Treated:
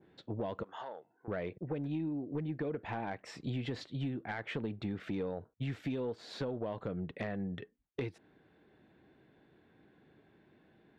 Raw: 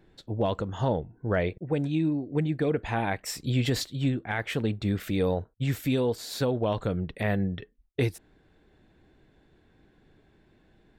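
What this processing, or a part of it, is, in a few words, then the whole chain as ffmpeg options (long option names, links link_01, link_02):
AM radio: -filter_complex "[0:a]highpass=130,lowpass=3300,acompressor=threshold=-30dB:ratio=10,asoftclip=type=tanh:threshold=-25dB,asettb=1/sr,asplit=3[link_01][link_02][link_03];[link_01]atrim=end=0.634[link_04];[link_02]atrim=start=0.63:end=1.28,asetpts=PTS-STARTPTS,afade=type=in:duration=0.004:curve=qsin,afade=type=out:start_time=0.646:duration=0.004:curve=qsin,highpass=720[link_05];[link_03]atrim=start=1.276[link_06];[link_04][link_05]acrossfade=duration=0.004:curve1=hsin:curve2=qsin[link_07];[link_07][link_06]acrossfade=duration=0.004:curve1=qsin:curve2=hsin,adynamicequalizer=threshold=0.00282:dfrequency=1600:dqfactor=0.7:tfrequency=1600:tqfactor=0.7:attack=5:release=100:ratio=0.375:range=2.5:mode=cutabove:tftype=highshelf,volume=-1.5dB"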